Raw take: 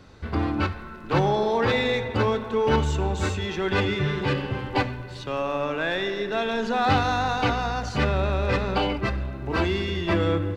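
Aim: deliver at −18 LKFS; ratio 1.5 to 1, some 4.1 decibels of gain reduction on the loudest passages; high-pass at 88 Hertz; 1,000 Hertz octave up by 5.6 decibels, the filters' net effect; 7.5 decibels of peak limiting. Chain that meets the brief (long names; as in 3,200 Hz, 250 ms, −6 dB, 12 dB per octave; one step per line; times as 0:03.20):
high-pass filter 88 Hz
parametric band 1,000 Hz +7.5 dB
downward compressor 1.5 to 1, threshold −25 dBFS
level +9.5 dB
brickwall limiter −7.5 dBFS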